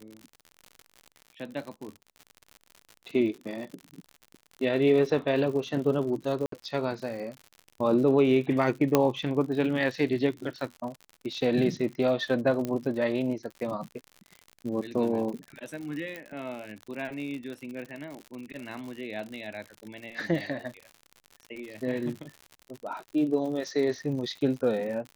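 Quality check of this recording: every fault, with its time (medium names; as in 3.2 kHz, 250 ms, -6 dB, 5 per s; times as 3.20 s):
crackle 84 per s -36 dBFS
6.46–6.52 s: dropout 63 ms
8.95 s: pop -7 dBFS
12.65 s: pop -18 dBFS
16.16 s: pop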